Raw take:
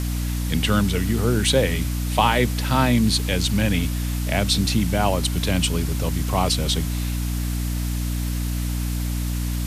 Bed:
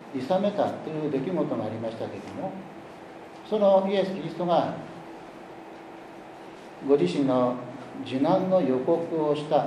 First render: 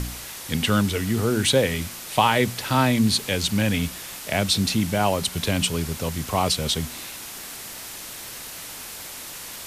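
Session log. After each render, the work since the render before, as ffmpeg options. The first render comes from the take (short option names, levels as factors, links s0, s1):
-af "bandreject=f=60:t=h:w=4,bandreject=f=120:t=h:w=4,bandreject=f=180:t=h:w=4,bandreject=f=240:t=h:w=4,bandreject=f=300:t=h:w=4"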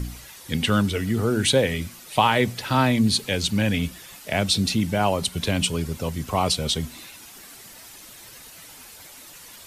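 -af "afftdn=nr=10:nf=-37"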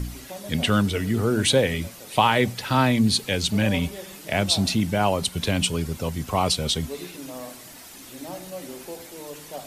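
-filter_complex "[1:a]volume=0.188[s0];[0:a][s0]amix=inputs=2:normalize=0"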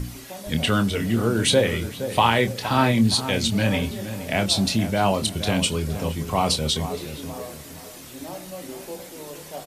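-filter_complex "[0:a]asplit=2[s0][s1];[s1]adelay=26,volume=0.398[s2];[s0][s2]amix=inputs=2:normalize=0,asplit=2[s3][s4];[s4]adelay=468,lowpass=f=1300:p=1,volume=0.316,asplit=2[s5][s6];[s6]adelay=468,lowpass=f=1300:p=1,volume=0.42,asplit=2[s7][s8];[s8]adelay=468,lowpass=f=1300:p=1,volume=0.42,asplit=2[s9][s10];[s10]adelay=468,lowpass=f=1300:p=1,volume=0.42[s11];[s5][s7][s9][s11]amix=inputs=4:normalize=0[s12];[s3][s12]amix=inputs=2:normalize=0"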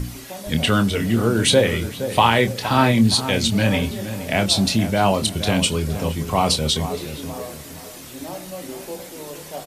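-af "volume=1.41,alimiter=limit=0.891:level=0:latency=1"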